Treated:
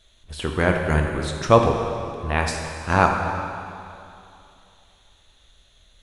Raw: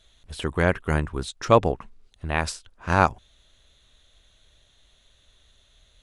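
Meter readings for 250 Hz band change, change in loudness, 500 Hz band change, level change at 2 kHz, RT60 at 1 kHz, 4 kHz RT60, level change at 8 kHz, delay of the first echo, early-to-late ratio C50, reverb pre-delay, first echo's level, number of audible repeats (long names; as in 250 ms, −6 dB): +3.5 dB, +2.5 dB, +3.0 dB, +3.0 dB, 2.7 s, 2.2 s, +2.5 dB, no echo audible, 3.5 dB, 6 ms, no echo audible, no echo audible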